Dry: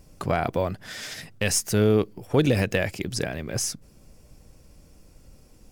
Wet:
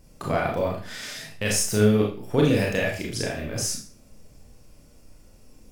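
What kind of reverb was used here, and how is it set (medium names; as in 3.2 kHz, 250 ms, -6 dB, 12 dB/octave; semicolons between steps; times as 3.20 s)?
Schroeder reverb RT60 0.4 s, combs from 26 ms, DRR -2 dB; trim -3.5 dB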